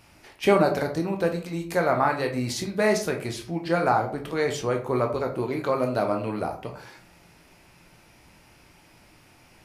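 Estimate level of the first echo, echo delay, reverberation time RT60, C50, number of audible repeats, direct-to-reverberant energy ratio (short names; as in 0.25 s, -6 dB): none, none, 0.45 s, 9.5 dB, none, 3.0 dB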